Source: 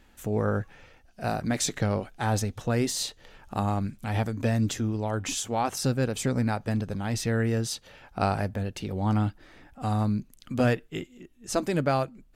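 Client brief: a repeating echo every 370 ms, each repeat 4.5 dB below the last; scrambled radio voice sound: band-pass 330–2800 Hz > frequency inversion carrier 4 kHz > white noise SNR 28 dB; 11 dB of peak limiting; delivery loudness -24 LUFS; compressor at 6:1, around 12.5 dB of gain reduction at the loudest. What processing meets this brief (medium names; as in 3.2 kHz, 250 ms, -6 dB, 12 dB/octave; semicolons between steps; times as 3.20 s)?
compression 6:1, threshold -34 dBFS; peak limiter -33.5 dBFS; band-pass 330–2800 Hz; feedback delay 370 ms, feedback 60%, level -4.5 dB; frequency inversion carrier 4 kHz; white noise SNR 28 dB; trim +19.5 dB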